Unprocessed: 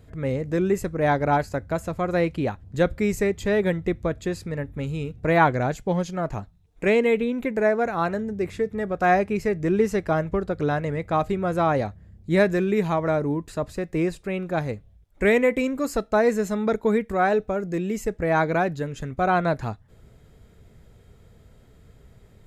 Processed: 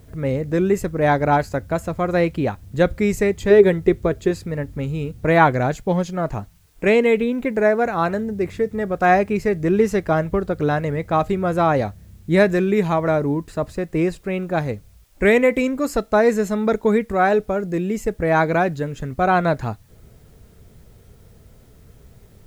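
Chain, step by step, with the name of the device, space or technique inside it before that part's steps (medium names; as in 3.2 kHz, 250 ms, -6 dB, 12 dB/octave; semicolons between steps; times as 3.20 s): 3.50–4.31 s: peaking EQ 400 Hz +12 dB 0.22 oct; plain cassette with noise reduction switched in (tape noise reduction on one side only decoder only; wow and flutter 16 cents; white noise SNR 42 dB); trim +4 dB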